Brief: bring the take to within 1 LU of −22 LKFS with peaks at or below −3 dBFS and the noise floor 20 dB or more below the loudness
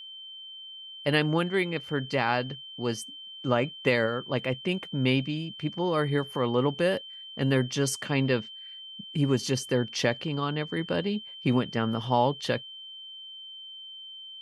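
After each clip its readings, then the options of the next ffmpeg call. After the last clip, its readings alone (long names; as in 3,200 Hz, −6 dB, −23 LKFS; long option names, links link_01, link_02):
interfering tone 3,100 Hz; level of the tone −41 dBFS; integrated loudness −28.0 LKFS; sample peak −10.5 dBFS; target loudness −22.0 LKFS
→ -af "bandreject=frequency=3100:width=30"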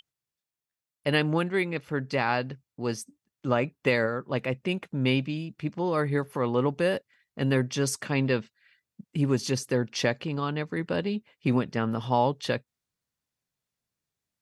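interfering tone none found; integrated loudness −28.0 LKFS; sample peak −10.5 dBFS; target loudness −22.0 LKFS
→ -af "volume=6dB"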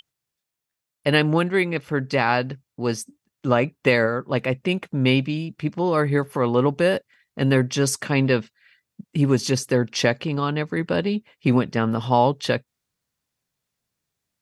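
integrated loudness −22.0 LKFS; sample peak −4.5 dBFS; background noise floor −84 dBFS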